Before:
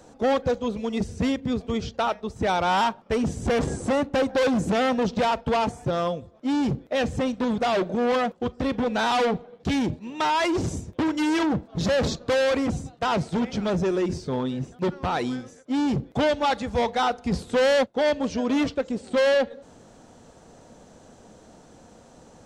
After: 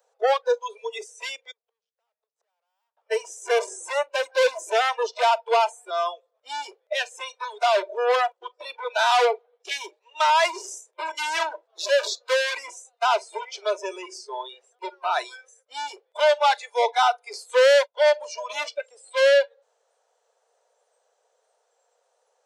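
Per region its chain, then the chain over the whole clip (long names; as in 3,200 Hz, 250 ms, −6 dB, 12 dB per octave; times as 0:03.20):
0:01.51–0:02.97: tube saturation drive 31 dB, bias 0.7 + high-pass filter 370 Hz 6 dB per octave + gate with flip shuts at −33 dBFS, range −30 dB
whole clip: noise reduction from a noise print of the clip's start 21 dB; Butterworth high-pass 440 Hz 72 dB per octave; level +4.5 dB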